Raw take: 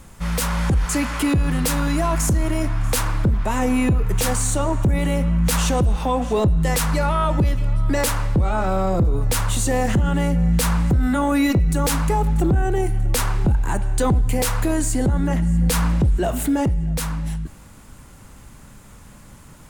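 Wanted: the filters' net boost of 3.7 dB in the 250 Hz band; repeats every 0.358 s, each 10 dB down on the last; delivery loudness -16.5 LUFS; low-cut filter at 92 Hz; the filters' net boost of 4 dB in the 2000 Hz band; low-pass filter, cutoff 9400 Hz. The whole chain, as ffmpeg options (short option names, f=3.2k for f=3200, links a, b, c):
-af "highpass=92,lowpass=9.4k,equalizer=f=250:t=o:g=5,equalizer=f=2k:t=o:g=5,aecho=1:1:358|716|1074|1432:0.316|0.101|0.0324|0.0104,volume=3dB"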